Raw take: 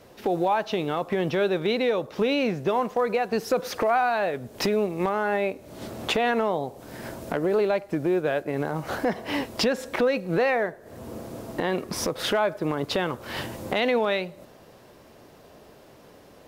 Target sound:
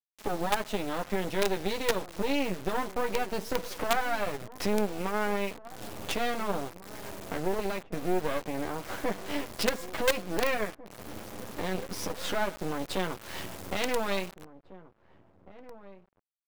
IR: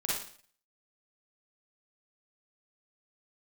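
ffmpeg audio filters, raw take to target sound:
-filter_complex "[0:a]flanger=delay=9.5:depth=1.3:regen=-1:speed=0.19:shape=sinusoidal,acrusher=bits=4:dc=4:mix=0:aa=0.000001,asplit=2[a][b];[b]adelay=1749,volume=-17dB,highshelf=f=4k:g=-39.4[c];[a][c]amix=inputs=2:normalize=0"

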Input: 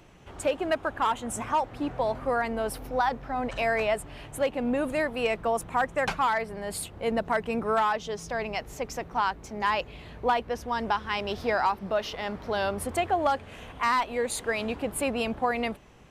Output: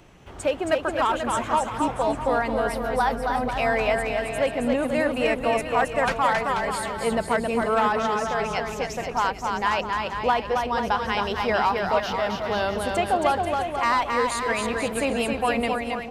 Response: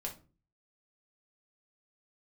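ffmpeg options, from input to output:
-filter_complex "[0:a]acrossover=split=9700[a][b];[b]acompressor=threshold=-56dB:ratio=4:attack=1:release=60[c];[a][c]amix=inputs=2:normalize=0,asplit=2[d][e];[e]aecho=0:1:270|486|658.8|797|907.6:0.631|0.398|0.251|0.158|0.1[f];[d][f]amix=inputs=2:normalize=0,volume=2.5dB"

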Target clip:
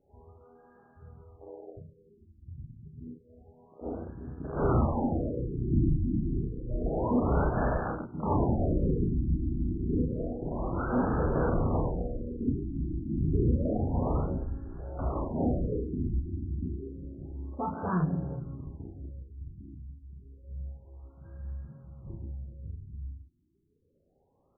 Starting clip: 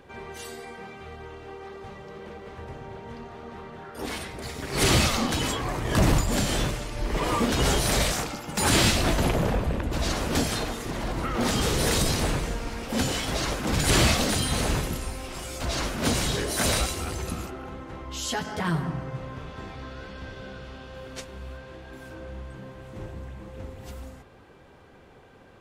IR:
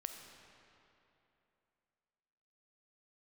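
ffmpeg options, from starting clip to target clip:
-af "afwtdn=0.0355,asoftclip=type=tanh:threshold=-17dB,aecho=1:1:34|47:0.668|0.376,asetrate=45938,aresample=44100,afftfilt=real='re*lt(b*sr/1024,350*pow(1800/350,0.5+0.5*sin(2*PI*0.29*pts/sr)))':imag='im*lt(b*sr/1024,350*pow(1800/350,0.5+0.5*sin(2*PI*0.29*pts/sr)))':win_size=1024:overlap=0.75,volume=-2.5dB"

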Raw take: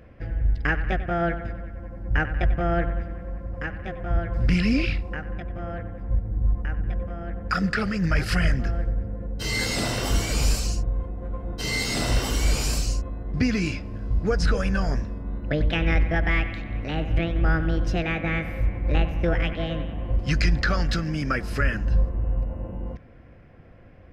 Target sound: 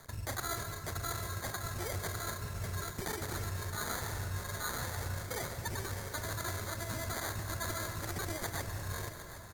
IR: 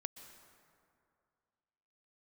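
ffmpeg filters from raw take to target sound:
-filter_complex "[0:a]lowpass=2.9k,equalizer=f=120:t=o:w=1.5:g=-13,bandreject=f=50:t=h:w=6,bandreject=f=100:t=h:w=6,bandreject=f=150:t=h:w=6,bandreject=f=200:t=h:w=6,bandreject=f=250:t=h:w=6,bandreject=f=300:t=h:w=6,areverse,acompressor=threshold=-37dB:ratio=8,areverse,asetrate=111573,aresample=44100,acrusher=samples=13:mix=1:aa=0.000001,aeval=exprs='sgn(val(0))*max(abs(val(0))-0.00141,0)':c=same,aexciter=amount=1.9:drive=1.5:freq=2k,asetrate=35002,aresample=44100,atempo=1.25992,aecho=1:1:758|1516|2274|3032|3790|4548:0.211|0.127|0.0761|0.0457|0.0274|0.0164[a];[1:a]atrim=start_sample=2205[b];[a][b]afir=irnorm=-1:irlink=0,volume=4.5dB"

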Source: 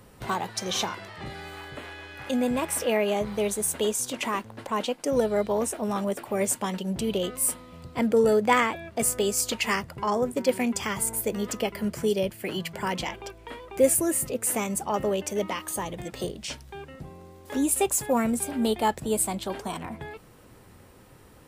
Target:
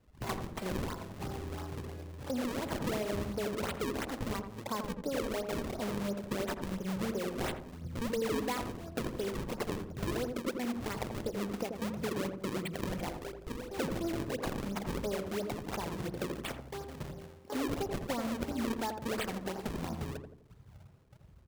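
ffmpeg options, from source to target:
-filter_complex "[0:a]afwtdn=0.0141,acompressor=threshold=-34dB:ratio=5,acrusher=samples=36:mix=1:aa=0.000001:lfo=1:lforange=57.6:lforate=2.9,asplit=2[a][b];[b]adelay=84,lowpass=f=800:p=1,volume=-4dB,asplit=2[c][d];[d]adelay=84,lowpass=f=800:p=1,volume=0.49,asplit=2[e][f];[f]adelay=84,lowpass=f=800:p=1,volume=0.49,asplit=2[g][h];[h]adelay=84,lowpass=f=800:p=1,volume=0.49,asplit=2[i][j];[j]adelay=84,lowpass=f=800:p=1,volume=0.49,asplit=2[k][l];[l]adelay=84,lowpass=f=800:p=1,volume=0.49[m];[c][e][g][i][k][m]amix=inputs=6:normalize=0[n];[a][n]amix=inputs=2:normalize=0"

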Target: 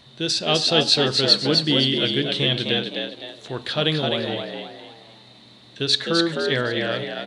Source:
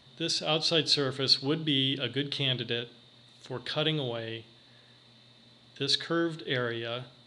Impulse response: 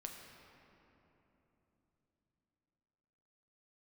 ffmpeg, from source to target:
-filter_complex "[0:a]asplit=6[a][b][c][d][e][f];[b]adelay=257,afreqshift=75,volume=-4dB[g];[c]adelay=514,afreqshift=150,volume=-12.9dB[h];[d]adelay=771,afreqshift=225,volume=-21.7dB[i];[e]adelay=1028,afreqshift=300,volume=-30.6dB[j];[f]adelay=1285,afreqshift=375,volume=-39.5dB[k];[a][g][h][i][j][k]amix=inputs=6:normalize=0,volume=7dB"

